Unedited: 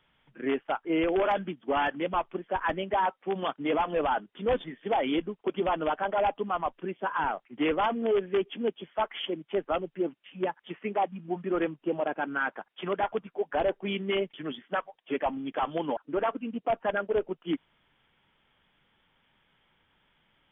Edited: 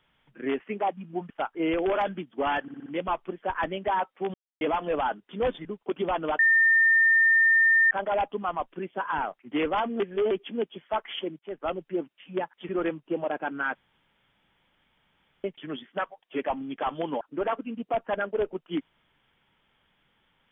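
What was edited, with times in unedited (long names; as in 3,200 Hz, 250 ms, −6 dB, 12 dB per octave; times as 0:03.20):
0:01.92: stutter 0.06 s, 5 plays
0:03.40–0:03.67: silence
0:04.71–0:05.23: remove
0:05.97: insert tone 1,810 Hz −16.5 dBFS 1.52 s
0:08.06–0:08.37: reverse
0:09.45–0:09.79: fade in linear, from −20.5 dB
0:10.75–0:11.45: move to 0:00.60
0:12.51–0:14.20: fill with room tone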